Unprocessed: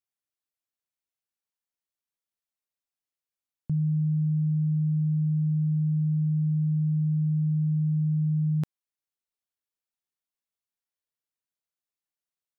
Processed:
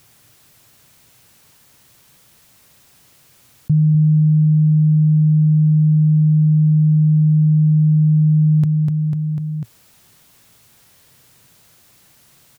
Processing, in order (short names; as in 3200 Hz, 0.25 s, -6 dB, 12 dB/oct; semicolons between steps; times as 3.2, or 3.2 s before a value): bell 120 Hz +14.5 dB 1.4 oct; on a send: feedback echo 0.248 s, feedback 40%, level -11 dB; on the sum: fast leveller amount 70%